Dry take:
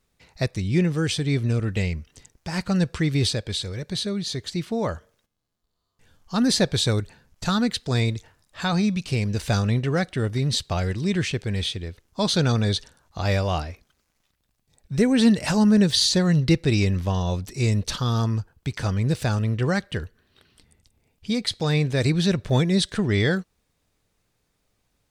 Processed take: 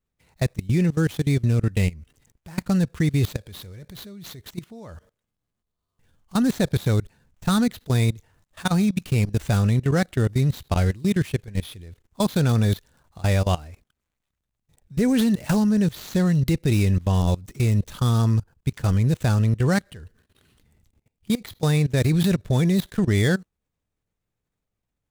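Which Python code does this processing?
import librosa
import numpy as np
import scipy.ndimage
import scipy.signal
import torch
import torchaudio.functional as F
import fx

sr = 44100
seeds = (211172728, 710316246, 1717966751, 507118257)

y = scipy.signal.medfilt(x, 9)
y = fx.bass_treble(y, sr, bass_db=4, treble_db=9)
y = fx.level_steps(y, sr, step_db=21)
y = F.gain(torch.from_numpy(y), 2.5).numpy()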